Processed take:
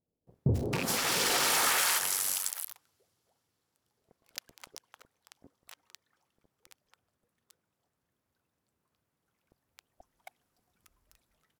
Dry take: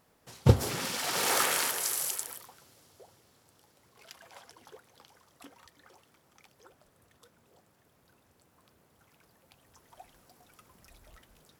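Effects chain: rattle on loud lows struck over -28 dBFS, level -18 dBFS; waveshaping leveller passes 5; compression 6:1, threshold -19 dBFS, peak gain reduction 11 dB; 1.72–2.38 s: AM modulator 95 Hz, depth 50%; bands offset in time lows, highs 270 ms, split 600 Hz; trim -6 dB

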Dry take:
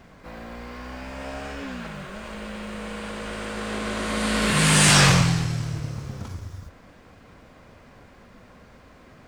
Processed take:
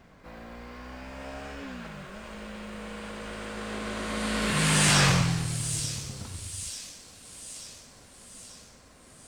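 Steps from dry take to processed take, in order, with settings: on a send: feedback echo behind a high-pass 887 ms, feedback 56%, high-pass 5.5 kHz, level -5 dB; on the sum: trim -5.5 dB

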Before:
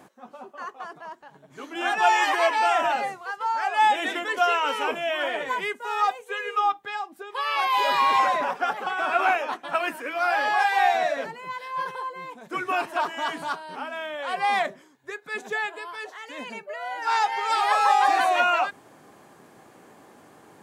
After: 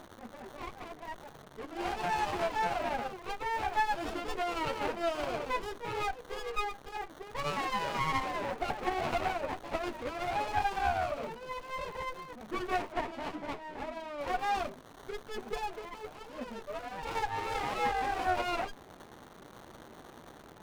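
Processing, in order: local Wiener filter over 9 samples; compression 6:1, threshold -25 dBFS, peak gain reduction 10 dB; chorus voices 4, 0.41 Hz, delay 11 ms, depth 2.8 ms; crackle 530 per s -44 dBFS; 12.92–14.21 s: distance through air 230 m; sliding maximum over 17 samples

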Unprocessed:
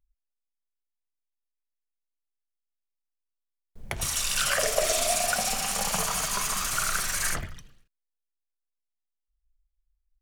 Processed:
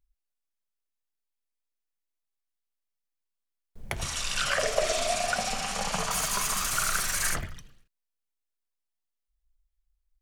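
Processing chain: 4.01–6.11 s: distance through air 67 m

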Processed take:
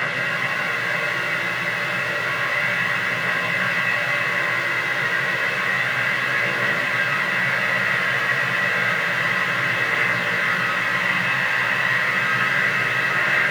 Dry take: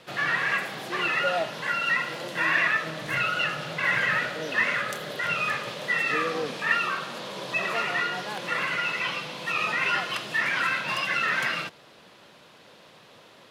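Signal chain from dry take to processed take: Paulstretch 46×, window 1.00 s, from 3.75 s; chorus voices 2, 0.15 Hz, delay 16 ms, depth 1.2 ms; bit-crushed delay 164 ms, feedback 80%, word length 8-bit, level -10 dB; trim +6.5 dB

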